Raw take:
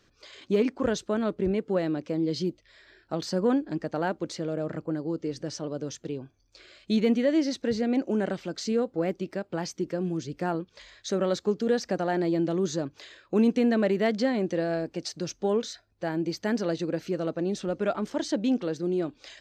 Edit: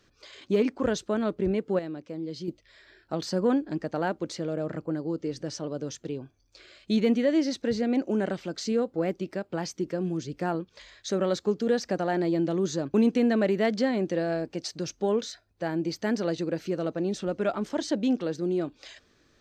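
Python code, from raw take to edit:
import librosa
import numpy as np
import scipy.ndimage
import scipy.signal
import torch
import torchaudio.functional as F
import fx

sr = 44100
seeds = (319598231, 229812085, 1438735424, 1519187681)

y = fx.edit(x, sr, fx.clip_gain(start_s=1.79, length_s=0.69, db=-7.5),
    fx.cut(start_s=12.94, length_s=0.41), tone=tone)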